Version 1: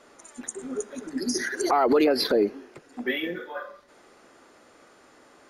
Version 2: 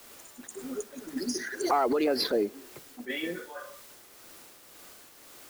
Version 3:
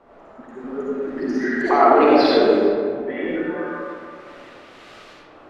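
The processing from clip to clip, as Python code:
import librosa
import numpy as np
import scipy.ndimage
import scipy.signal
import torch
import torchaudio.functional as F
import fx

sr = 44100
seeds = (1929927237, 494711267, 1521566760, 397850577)

y1 = fx.quant_dither(x, sr, seeds[0], bits=8, dither='triangular')
y1 = fx.tremolo_shape(y1, sr, shape='triangle', hz=1.9, depth_pct=45)
y1 = fx.attack_slew(y1, sr, db_per_s=320.0)
y1 = y1 * 10.0 ** (-2.5 / 20.0)
y2 = fx.filter_lfo_lowpass(y1, sr, shape='saw_up', hz=0.39, low_hz=900.0, high_hz=3800.0, q=1.1)
y2 = y2 + 10.0 ** (-21.5 / 20.0) * np.pad(y2, (int(379 * sr / 1000.0), 0))[:len(y2)]
y2 = fx.rev_freeverb(y2, sr, rt60_s=2.2, hf_ratio=0.45, predelay_ms=25, drr_db=-6.5)
y2 = y2 * 10.0 ** (4.5 / 20.0)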